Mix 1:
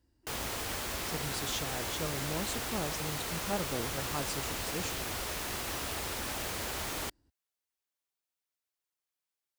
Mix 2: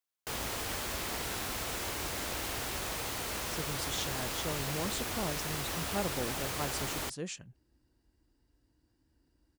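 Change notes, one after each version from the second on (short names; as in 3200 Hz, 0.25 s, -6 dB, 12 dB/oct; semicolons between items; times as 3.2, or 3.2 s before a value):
speech: entry +2.45 s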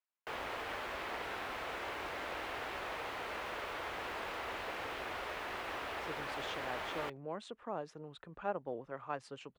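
speech: entry +2.50 s; master: add three-band isolator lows -14 dB, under 360 Hz, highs -23 dB, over 3000 Hz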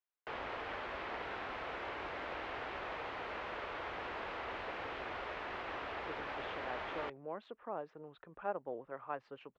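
speech: add tone controls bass -8 dB, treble -14 dB; master: add air absorption 180 m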